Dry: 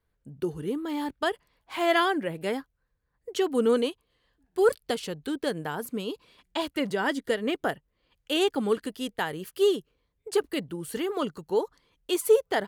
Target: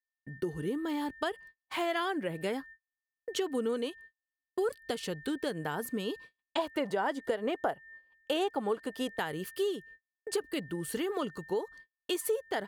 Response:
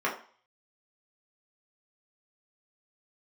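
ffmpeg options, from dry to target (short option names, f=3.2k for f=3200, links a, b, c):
-filter_complex "[0:a]aeval=exprs='val(0)+0.00355*sin(2*PI*1800*n/s)':c=same,asettb=1/sr,asplit=3[a][b][c];[a]atrim=end=6.584[d];[b]atrim=start=6.58:end=9.19,asetpts=PTS-STARTPTS,afade=t=in:d=0.004:c=qsin,afade=t=out:st=2.606:d=0.004:c=qsin,equalizer=f=770:t=o:w=1.6:g=12[e];[c]atrim=start=9.186[f];[d][e]acrossfade=d=0.004:c1=hsin:c2=qsin[g];[g][f]acrossfade=d=0.004:c1=qsin:c2=hsin,agate=range=-44dB:threshold=-46dB:ratio=16:detection=peak,acompressor=threshold=-30dB:ratio=4"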